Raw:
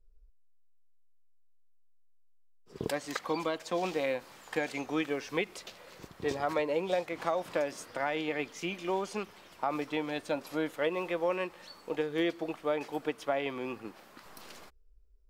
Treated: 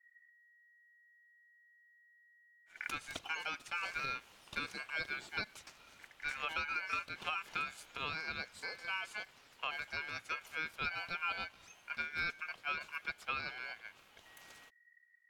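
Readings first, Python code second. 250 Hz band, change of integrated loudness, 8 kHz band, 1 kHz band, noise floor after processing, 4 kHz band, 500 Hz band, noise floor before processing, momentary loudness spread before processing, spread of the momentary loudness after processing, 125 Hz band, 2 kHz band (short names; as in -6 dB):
-21.0 dB, -6.0 dB, -6.5 dB, -6.0 dB, -67 dBFS, -1.5 dB, -22.0 dB, -59 dBFS, 15 LU, 17 LU, -11.0 dB, +1.5 dB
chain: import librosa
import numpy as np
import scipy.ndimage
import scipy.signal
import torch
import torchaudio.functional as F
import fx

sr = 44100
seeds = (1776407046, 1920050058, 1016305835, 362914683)

y = x * np.sin(2.0 * np.pi * 1900.0 * np.arange(len(x)) / sr)
y = y * librosa.db_to_amplitude(-5.0)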